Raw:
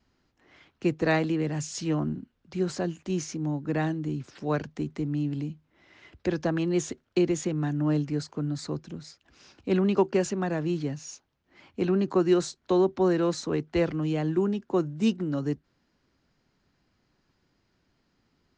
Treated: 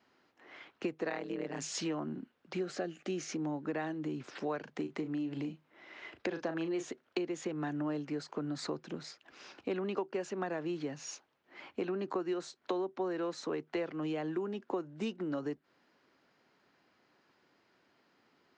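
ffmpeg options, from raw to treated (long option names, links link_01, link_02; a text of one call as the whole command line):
ffmpeg -i in.wav -filter_complex "[0:a]asettb=1/sr,asplit=3[link_01][link_02][link_03];[link_01]atrim=end=1.094[link_04];[link_02]atrim=start=1.09:end=1.62,asetpts=PTS-STARTPTS,afade=type=in:duration=0.004:curve=qsin,afade=type=out:start_time=0.526:duration=0.004:curve=qsin,tremolo=f=120:d=0.974[link_05];[link_03]atrim=start=1.616[link_06];[link_04][link_05]acrossfade=duration=0.004:curve1=hsin:curve2=qsin[link_07];[link_07][link_06]acrossfade=duration=0.004:curve1=qsin:curve2=hsin,asettb=1/sr,asplit=3[link_08][link_09][link_10];[link_08]atrim=end=2.644[link_11];[link_09]atrim=start=2.64:end=3.32,asetpts=PTS-STARTPTS,afade=type=in:duration=0.004:curve=qsin,afade=type=out:start_time=0.676:duration=0.004:curve=qsin,asuperstop=centerf=970:order=4:qfactor=3.3[link_12];[link_10]atrim=start=3.316[link_13];[link_11][link_12]acrossfade=duration=0.004:curve1=hsin:curve2=qsin[link_14];[link_14][link_13]acrossfade=duration=0.004:curve1=qsin:curve2=hsin,asettb=1/sr,asplit=3[link_15][link_16][link_17];[link_15]atrim=end=4.634[link_18];[link_16]atrim=start=4.63:end=6.91,asetpts=PTS-STARTPTS,afade=type=in:duration=0.004:curve=qsin,afade=type=out:start_time=2.276:duration=0.004:curve=qsin,asplit=2[link_19][link_20];[link_20]adelay=37,volume=-9dB[link_21];[link_19][link_21]amix=inputs=2:normalize=0,atrim=end_sample=100548[link_22];[link_17]atrim=start=6.906[link_23];[link_18][link_22]acrossfade=duration=0.004:curve1=hsin:curve2=qsin[link_24];[link_24][link_23]acrossfade=duration=0.004:curve1=qsin:curve2=hsin,highpass=120,bass=frequency=250:gain=-14,treble=frequency=4000:gain=-9,acompressor=threshold=-39dB:ratio=6,volume=5.5dB" out.wav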